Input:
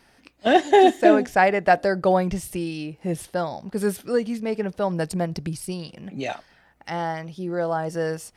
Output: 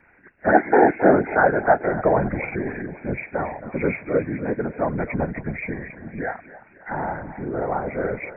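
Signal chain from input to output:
hearing-aid frequency compression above 1,400 Hz 4 to 1
feedback echo with a high-pass in the loop 270 ms, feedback 57%, high-pass 260 Hz, level −14.5 dB
random phases in short frames

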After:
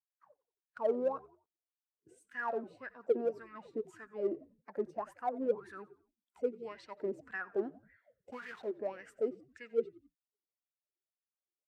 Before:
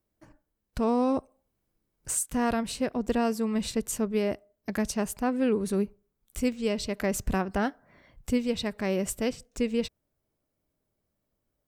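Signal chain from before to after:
spectral magnitudes quantised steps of 15 dB
high-pass filter 83 Hz 12 dB per octave
0:08.32–0:08.76: bit-depth reduction 6 bits, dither none
LFO wah 1.8 Hz 340–1,800 Hz, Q 12
in parallel at −10.5 dB: hard clipping −38 dBFS, distortion −7 dB
on the sum: noise reduction from a noise print of the clip's start 19 dB
echo with shifted repeats 89 ms, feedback 39%, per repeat −59 Hz, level −20.5 dB
level +4.5 dB

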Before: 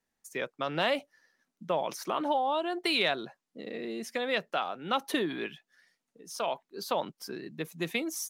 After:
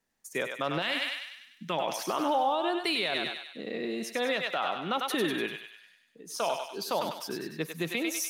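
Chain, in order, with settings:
0:00.82–0:01.78: drawn EQ curve 340 Hz 0 dB, 530 Hz −9 dB, 2,100 Hz +6 dB
feedback echo with a high-pass in the loop 98 ms, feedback 55%, high-pass 850 Hz, level −4.5 dB
brickwall limiter −22 dBFS, peak gain reduction 10.5 dB
0:03.97–0:04.59: surface crackle 220 per second −58 dBFS
0:05.52–0:06.33: notch filter 5,500 Hz, Q 6.3
level +3 dB

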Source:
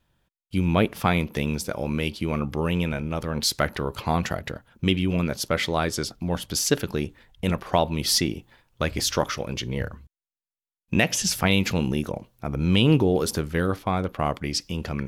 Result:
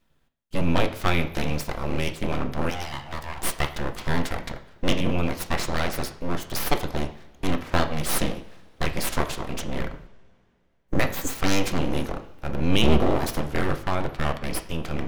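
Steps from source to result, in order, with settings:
sub-octave generator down 1 octave, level +2 dB
0:02.70–0:03.77: Butterworth high-pass 310 Hz 72 dB per octave
0:10.80–0:11.33: healed spectral selection 2,200–6,200 Hz
full-wave rectification
on a send: convolution reverb, pre-delay 3 ms, DRR 7 dB

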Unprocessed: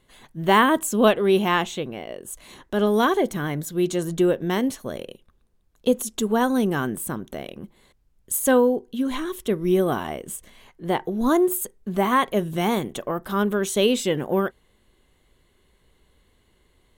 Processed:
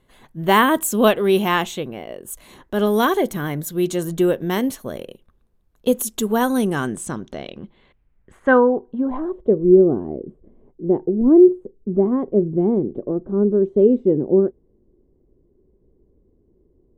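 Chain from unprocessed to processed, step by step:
low-pass filter sweep 14,000 Hz → 370 Hz, 0:06.36–0:09.85
one half of a high-frequency compander decoder only
level +2 dB

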